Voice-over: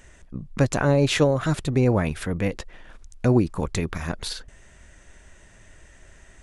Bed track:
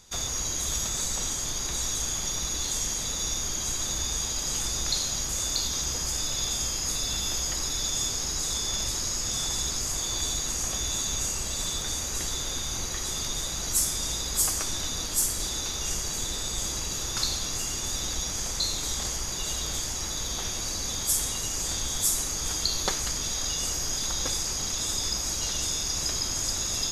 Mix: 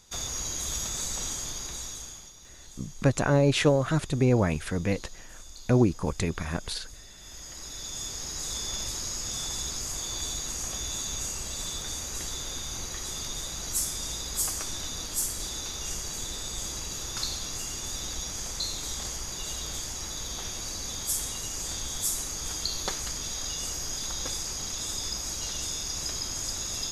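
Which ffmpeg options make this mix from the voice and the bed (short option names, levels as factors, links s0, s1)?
-filter_complex "[0:a]adelay=2450,volume=0.75[s0];[1:a]volume=4.73,afade=t=out:st=1.33:d=1:silence=0.133352,afade=t=in:st=7.17:d=1.42:silence=0.149624[s1];[s0][s1]amix=inputs=2:normalize=0"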